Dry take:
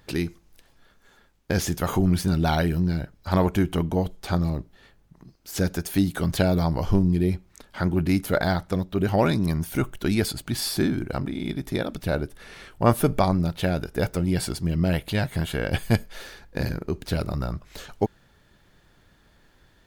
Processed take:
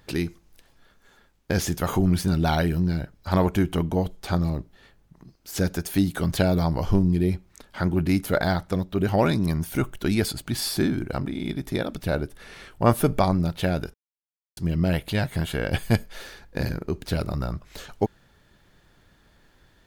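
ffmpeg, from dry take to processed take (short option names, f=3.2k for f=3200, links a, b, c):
-filter_complex "[0:a]asplit=3[a][b][c];[a]atrim=end=13.94,asetpts=PTS-STARTPTS,afade=t=out:st=13.936:d=0.004:c=hsin[d];[b]atrim=start=13.94:end=14.57,asetpts=PTS-STARTPTS,volume=0[e];[c]atrim=start=14.57,asetpts=PTS-STARTPTS,afade=t=in:d=0.004:c=hsin[f];[d][e][f]concat=n=3:v=0:a=1"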